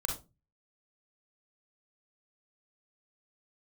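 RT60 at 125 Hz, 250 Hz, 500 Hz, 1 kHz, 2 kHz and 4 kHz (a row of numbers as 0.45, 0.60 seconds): 0.55, 0.40, 0.30, 0.25, 0.20, 0.20 seconds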